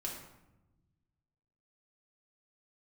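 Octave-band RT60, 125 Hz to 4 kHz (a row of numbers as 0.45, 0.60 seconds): 2.0, 1.7, 1.0, 0.90, 0.75, 0.60 seconds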